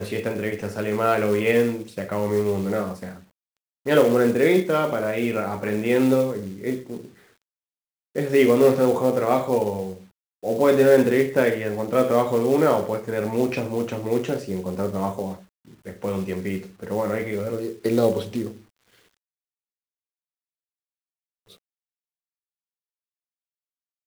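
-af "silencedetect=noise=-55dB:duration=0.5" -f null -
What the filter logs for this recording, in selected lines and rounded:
silence_start: 7.42
silence_end: 8.15 | silence_duration: 0.73
silence_start: 19.17
silence_end: 21.46 | silence_duration: 2.29
silence_start: 21.59
silence_end: 24.06 | silence_duration: 2.47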